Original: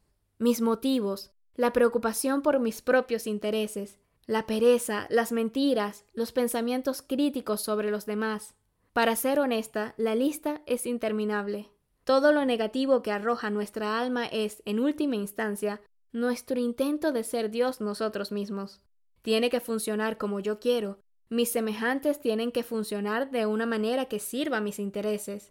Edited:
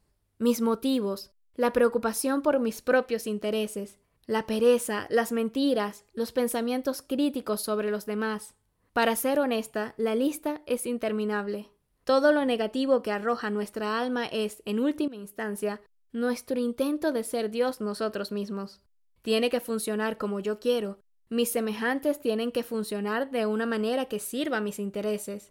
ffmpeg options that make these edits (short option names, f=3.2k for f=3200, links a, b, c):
-filter_complex "[0:a]asplit=2[a][b];[a]atrim=end=15.08,asetpts=PTS-STARTPTS,afade=t=out:st=15.076:d=0.004:c=hsin:silence=0.141254[c];[b]atrim=start=15.08,asetpts=PTS-STARTPTS,afade=t=in:d=0.52:silence=0.141254[d];[c][d]concat=n=2:v=0:a=1"